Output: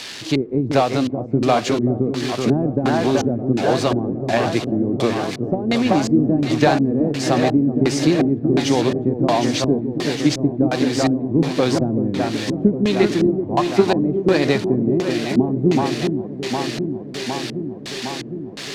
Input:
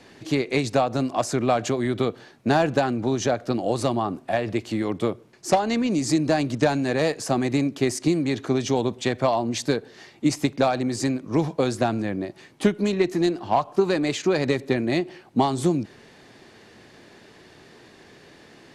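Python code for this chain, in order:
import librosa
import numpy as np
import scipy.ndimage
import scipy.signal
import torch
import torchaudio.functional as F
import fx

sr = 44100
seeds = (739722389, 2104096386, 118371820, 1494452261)

y = x + 0.5 * 10.0 ** (-21.0 / 20.0) * np.diff(np.sign(x), prepend=np.sign(x[:1]))
y = fx.echo_alternate(y, sr, ms=380, hz=1800.0, feedback_pct=85, wet_db=-5.5)
y = fx.filter_lfo_lowpass(y, sr, shape='square', hz=1.4, low_hz=320.0, high_hz=4200.0, q=1.1)
y = y * 10.0 ** (4.0 / 20.0)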